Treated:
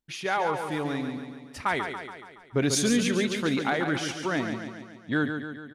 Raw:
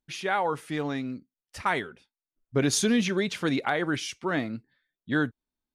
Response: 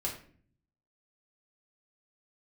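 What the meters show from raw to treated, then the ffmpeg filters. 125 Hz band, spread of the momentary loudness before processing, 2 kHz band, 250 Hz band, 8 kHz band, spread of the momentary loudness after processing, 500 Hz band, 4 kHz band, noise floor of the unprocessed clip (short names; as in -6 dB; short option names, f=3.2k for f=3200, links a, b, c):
+0.5 dB, 13 LU, +0.5 dB, +0.5 dB, +0.5 dB, 15 LU, +0.5 dB, +1.0 dB, under -85 dBFS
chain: -af "acontrast=88,aecho=1:1:141|282|423|564|705|846|987:0.447|0.255|0.145|0.0827|0.0472|0.0269|0.0153,volume=-7.5dB"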